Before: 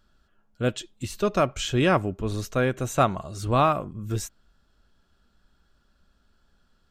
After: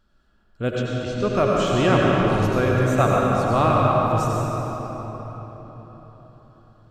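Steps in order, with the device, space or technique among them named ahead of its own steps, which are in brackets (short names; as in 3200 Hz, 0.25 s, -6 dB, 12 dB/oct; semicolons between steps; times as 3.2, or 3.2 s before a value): 0.72–1.35 LPF 6500 Hz 24 dB/oct; swimming-pool hall (reverb RT60 4.4 s, pre-delay 77 ms, DRR -4 dB; high shelf 4000 Hz -6 dB)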